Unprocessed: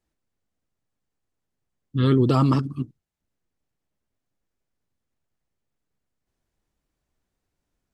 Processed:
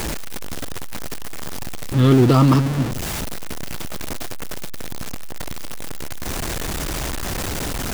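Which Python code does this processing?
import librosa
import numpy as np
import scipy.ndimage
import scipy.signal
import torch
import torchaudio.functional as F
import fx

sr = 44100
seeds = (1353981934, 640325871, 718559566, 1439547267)

y = x + 0.5 * 10.0 ** (-22.0 / 20.0) * np.sign(x)
y = F.gain(torch.from_numpy(y), 3.5).numpy()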